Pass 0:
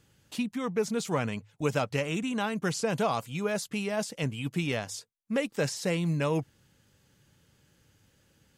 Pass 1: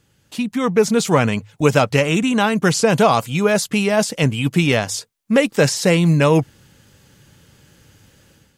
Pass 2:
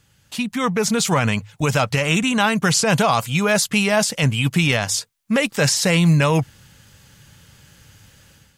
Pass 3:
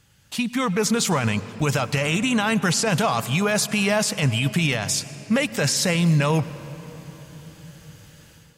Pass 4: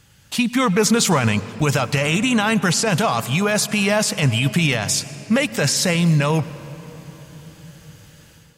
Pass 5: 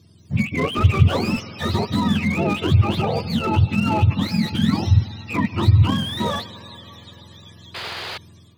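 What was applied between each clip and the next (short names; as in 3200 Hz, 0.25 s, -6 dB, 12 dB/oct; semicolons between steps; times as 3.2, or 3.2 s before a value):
AGC gain up to 10.5 dB; gain +3.5 dB
limiter -8 dBFS, peak gain reduction 6.5 dB; bell 350 Hz -9 dB 1.6 oct; gain +3.5 dB
limiter -12.5 dBFS, peak gain reduction 7.5 dB; on a send at -15 dB: reverb RT60 4.5 s, pre-delay 91 ms
vocal rider within 4 dB 2 s; gain +3 dB
spectrum mirrored in octaves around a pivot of 740 Hz; painted sound noise, 7.74–8.18, 330–5000 Hz -29 dBFS; slew limiter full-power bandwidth 130 Hz; gain -1 dB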